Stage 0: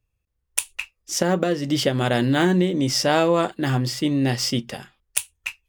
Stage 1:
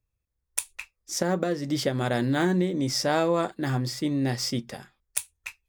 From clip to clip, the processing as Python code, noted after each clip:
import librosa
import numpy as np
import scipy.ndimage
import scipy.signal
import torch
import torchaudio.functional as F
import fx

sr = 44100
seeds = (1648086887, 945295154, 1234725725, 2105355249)

y = fx.peak_eq(x, sr, hz=2900.0, db=-10.5, octaves=0.24)
y = F.gain(torch.from_numpy(y), -5.0).numpy()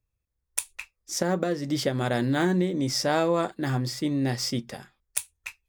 y = x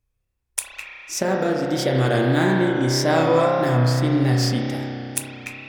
y = fx.rev_spring(x, sr, rt60_s=3.1, pass_ms=(31,), chirp_ms=55, drr_db=-2.0)
y = fx.wow_flutter(y, sr, seeds[0], rate_hz=2.1, depth_cents=59.0)
y = F.gain(torch.from_numpy(y), 3.0).numpy()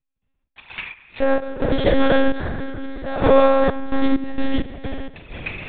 y = fx.step_gate(x, sr, bpm=65, pattern='.x.x.x.xxx....xx', floor_db=-12.0, edge_ms=4.5)
y = fx.lpc_monotone(y, sr, seeds[1], pitch_hz=270.0, order=10)
y = F.gain(torch.from_numpy(y), 5.0).numpy()